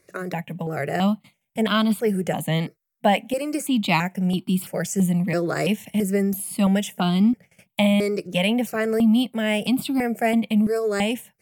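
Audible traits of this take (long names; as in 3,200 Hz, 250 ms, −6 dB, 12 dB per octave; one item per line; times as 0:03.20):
notches that jump at a steady rate 3 Hz 860–1,800 Hz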